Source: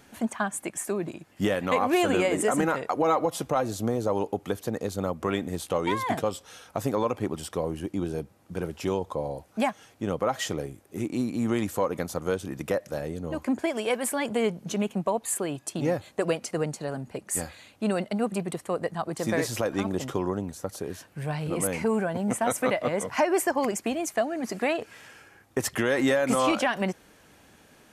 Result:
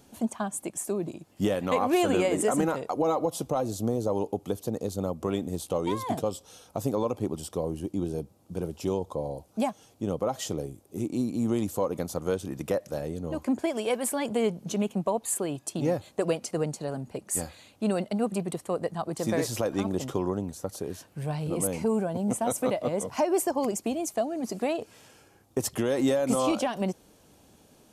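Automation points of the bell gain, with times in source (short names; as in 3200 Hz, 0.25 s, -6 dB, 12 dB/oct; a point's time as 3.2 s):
bell 1800 Hz 1.2 oct
1.17 s -12.5 dB
1.78 s -6 dB
2.47 s -6 dB
2.99 s -14 dB
11.69 s -14 dB
12.27 s -6.5 dB
21.1 s -6.5 dB
21.72 s -13 dB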